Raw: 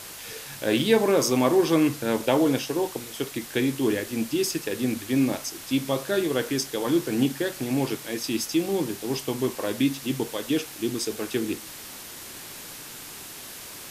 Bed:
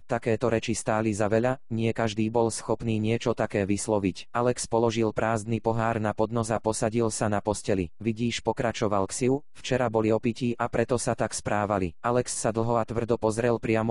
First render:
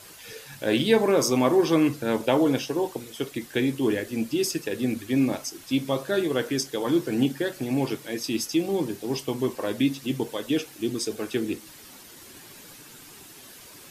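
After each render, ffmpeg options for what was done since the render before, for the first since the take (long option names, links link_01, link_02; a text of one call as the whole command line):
ffmpeg -i in.wav -af "afftdn=noise_reduction=9:noise_floor=-41" out.wav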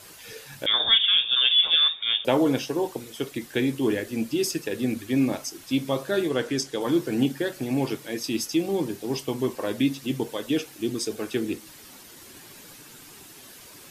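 ffmpeg -i in.wav -filter_complex "[0:a]asettb=1/sr,asplit=3[link_01][link_02][link_03];[link_01]atrim=end=0.664[link_04];[link_02]atrim=start=0.66:end=2.25,asetpts=PTS-STARTPTS,afade=type=in:duration=0.004:curve=qsin,afade=type=out:start_time=1.586:duration=0.004:curve=qsin,lowpass=frequency=3200:width_type=q:width=0.5098,lowpass=frequency=3200:width_type=q:width=0.6013,lowpass=frequency=3200:width_type=q:width=0.9,lowpass=frequency=3200:width_type=q:width=2.563,afreqshift=-3800[link_05];[link_03]atrim=start=2.246[link_06];[link_04][link_05]acrossfade=duration=0.004:curve1=hsin:curve2=qsin[link_07];[link_07][link_06]acrossfade=duration=0.004:curve1=qsin:curve2=hsin,asettb=1/sr,asplit=3[link_08][link_09][link_10];[link_08]atrim=end=6.294[link_11];[link_09]atrim=start=6.29:end=6.81,asetpts=PTS-STARTPTS,afade=type=in:duration=0.004:curve=qsin,afade=type=out:start_time=0.516:duration=0.004:curve=qsin,lowpass=10000[link_12];[link_10]atrim=start=6.806[link_13];[link_11][link_12]acrossfade=duration=0.004:curve1=hsin:curve2=qsin[link_14];[link_14][link_13]acrossfade=duration=0.004:curve1=qsin:curve2=hsin" out.wav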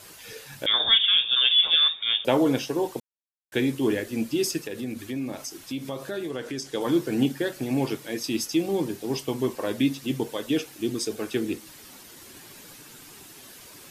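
ffmpeg -i in.wav -filter_complex "[0:a]asettb=1/sr,asplit=3[link_01][link_02][link_03];[link_01]atrim=end=4.604[link_04];[link_02]atrim=start=4.6:end=6.7,asetpts=PTS-STARTPTS,afade=type=in:duration=0.004:curve=qsin,afade=type=out:start_time=2.096:duration=0.004:curve=qsin,acompressor=threshold=-31dB:ratio=2.5:attack=3.2:release=140:knee=1:detection=peak[link_05];[link_03]atrim=start=6.696[link_06];[link_04][link_05]acrossfade=duration=0.004:curve1=hsin:curve2=qsin[link_07];[link_07][link_06]acrossfade=duration=0.004:curve1=qsin:curve2=hsin,asplit=3[link_08][link_09][link_10];[link_08]atrim=end=3,asetpts=PTS-STARTPTS,afade=type=out:start_time=2.996:duration=0.004:curve=hsin[link_11];[link_09]atrim=start=3:end=3.52,asetpts=PTS-STARTPTS,volume=0[link_12];[link_10]atrim=start=3.52,asetpts=PTS-STARTPTS,afade=type=in:duration=0.004:curve=hsin[link_13];[link_11][link_12][link_13]concat=n=3:v=0:a=1" out.wav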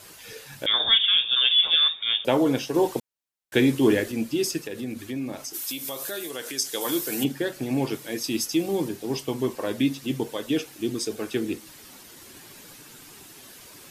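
ffmpeg -i in.wav -filter_complex "[0:a]asettb=1/sr,asplit=3[link_01][link_02][link_03];[link_01]atrim=end=2.744[link_04];[link_02]atrim=start=2.74:end=4.12,asetpts=PTS-STARTPTS,afade=type=in:duration=0.004:curve=qsin,afade=type=out:start_time=1.376:duration=0.004:curve=qsin,acontrast=21[link_05];[link_03]atrim=start=4.116[link_06];[link_04][link_05]acrossfade=duration=0.004:curve1=hsin:curve2=qsin[link_07];[link_07][link_06]acrossfade=duration=0.004:curve1=qsin:curve2=hsin,asplit=3[link_08][link_09][link_10];[link_08]afade=type=out:start_time=5.53:duration=0.02[link_11];[link_09]aemphasis=mode=production:type=riaa,afade=type=in:start_time=5.53:duration=0.02,afade=type=out:start_time=7.23:duration=0.02[link_12];[link_10]afade=type=in:start_time=7.23:duration=0.02[link_13];[link_11][link_12][link_13]amix=inputs=3:normalize=0,asettb=1/sr,asplit=3[link_14][link_15][link_16];[link_14]atrim=end=7.934[link_17];[link_15]atrim=start=7.93:end=8.89,asetpts=PTS-STARTPTS,afade=type=in:duration=0.004:curve=qsin,afade=type=out:start_time=0.956:duration=0.004:curve=qsin,highshelf=frequency=6700:gain=5[link_18];[link_16]atrim=start=8.886[link_19];[link_17][link_18]acrossfade=duration=0.004:curve1=hsin:curve2=qsin[link_20];[link_20][link_19]acrossfade=duration=0.004:curve1=qsin:curve2=hsin" out.wav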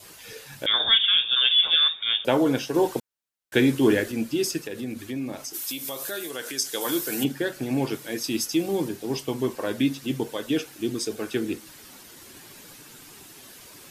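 ffmpeg -i in.wav -af "adynamicequalizer=threshold=0.00447:dfrequency=1500:dqfactor=4.9:tfrequency=1500:tqfactor=4.9:attack=5:release=100:ratio=0.375:range=2.5:mode=boostabove:tftype=bell" out.wav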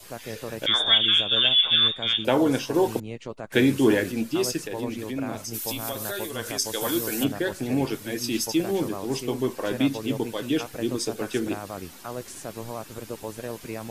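ffmpeg -i in.wav -i bed.wav -filter_complex "[1:a]volume=-10.5dB[link_01];[0:a][link_01]amix=inputs=2:normalize=0" out.wav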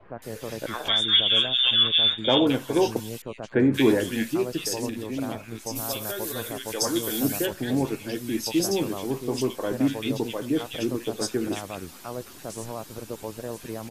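ffmpeg -i in.wav -filter_complex "[0:a]acrossover=split=1800[link_01][link_02];[link_02]adelay=220[link_03];[link_01][link_03]amix=inputs=2:normalize=0" out.wav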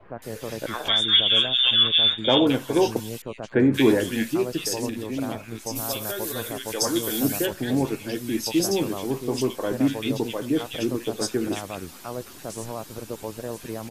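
ffmpeg -i in.wav -af "volume=1.5dB" out.wav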